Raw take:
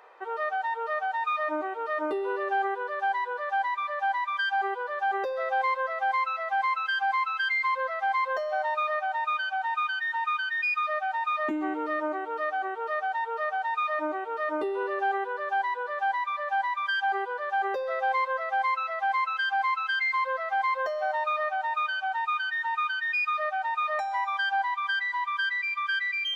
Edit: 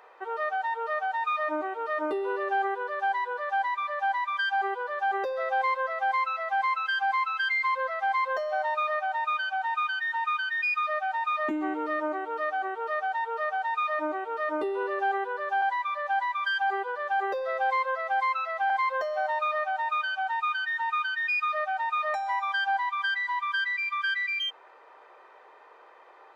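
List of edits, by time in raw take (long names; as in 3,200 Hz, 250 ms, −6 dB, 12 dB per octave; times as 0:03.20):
0:15.62–0:16.04: remove
0:19.12–0:20.55: remove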